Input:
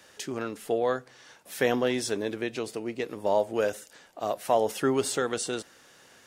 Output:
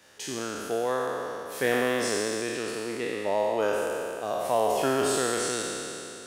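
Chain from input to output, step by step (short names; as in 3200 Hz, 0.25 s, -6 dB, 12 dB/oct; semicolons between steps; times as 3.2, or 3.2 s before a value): spectral trails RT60 2.98 s; gain -4 dB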